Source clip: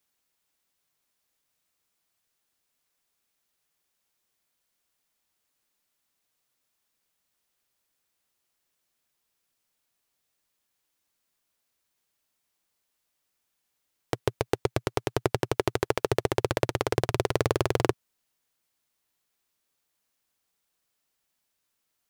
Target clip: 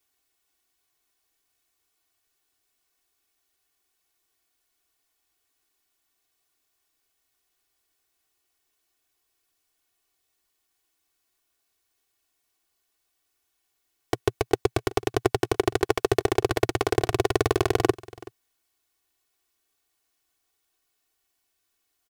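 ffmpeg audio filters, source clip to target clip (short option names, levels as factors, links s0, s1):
-af "aecho=1:1:2.7:0.94,aecho=1:1:378:0.0944"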